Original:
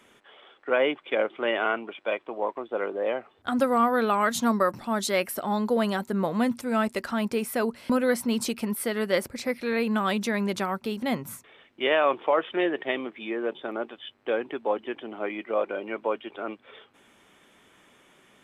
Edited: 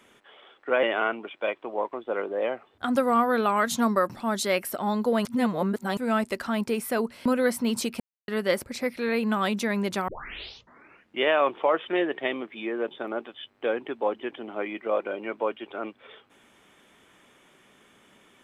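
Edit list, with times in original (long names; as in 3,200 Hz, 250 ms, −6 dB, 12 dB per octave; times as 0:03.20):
0:00.83–0:01.47: remove
0:05.89–0:06.61: reverse
0:08.64–0:08.92: silence
0:10.72: tape start 1.13 s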